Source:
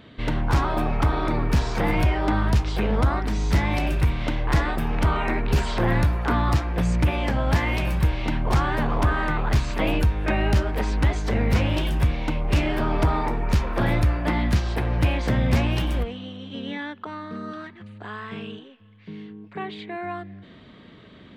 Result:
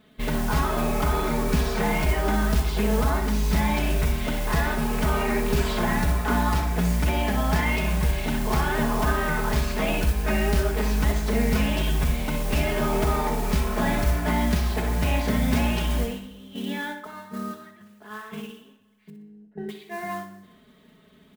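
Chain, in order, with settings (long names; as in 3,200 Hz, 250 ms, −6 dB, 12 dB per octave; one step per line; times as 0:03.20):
noise gate −33 dBFS, range −9 dB
comb filter 4.7 ms, depth 81%
in parallel at −3 dB: brickwall limiter −14.5 dBFS, peak gain reduction 7 dB
on the sum: noise that follows the level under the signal 18 dB
0:19.10–0:19.69: moving average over 38 samples
on a send: flutter between parallel walls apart 10.5 metres, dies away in 0.38 s
on the sum: dense smooth reverb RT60 0.95 s, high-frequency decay 0.75×, DRR 10 dB
level −7 dB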